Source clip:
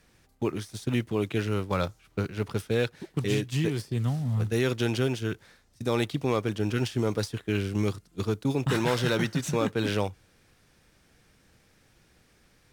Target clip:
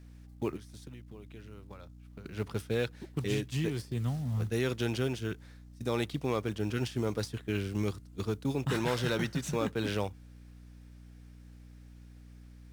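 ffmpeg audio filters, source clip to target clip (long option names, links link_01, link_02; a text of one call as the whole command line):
ffmpeg -i in.wav -filter_complex "[0:a]asettb=1/sr,asplit=3[link_01][link_02][link_03];[link_01]atrim=end=0.564[link_04];[link_02]atrim=start=0.56:end=2.26,asetpts=PTS-STARTPTS,afade=type=in:duration=0.004:curve=qsin,afade=type=out:start_time=1.696:duration=0.004:curve=qsin,acompressor=threshold=-41dB:ratio=16[link_05];[link_03]atrim=start=2.256[link_06];[link_04][link_05]acrossfade=duration=0.004:curve1=hsin:curve2=qsin[link_07];[link_07][link_06]acrossfade=duration=0.004:curve1=qsin:curve2=hsin,aeval=exprs='val(0)+0.00562*(sin(2*PI*60*n/s)+sin(2*PI*2*60*n/s)/2+sin(2*PI*3*60*n/s)/3+sin(2*PI*4*60*n/s)/4+sin(2*PI*5*60*n/s)/5)':channel_layout=same,acrusher=bits=8:mode=log:mix=0:aa=0.000001,volume=-5dB" out.wav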